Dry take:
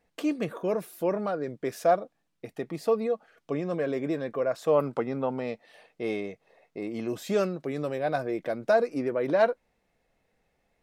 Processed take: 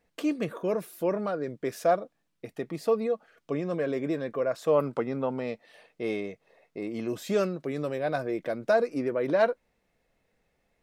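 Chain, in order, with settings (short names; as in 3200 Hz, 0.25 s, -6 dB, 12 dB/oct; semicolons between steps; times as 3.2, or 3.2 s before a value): bell 780 Hz -3.5 dB 0.33 oct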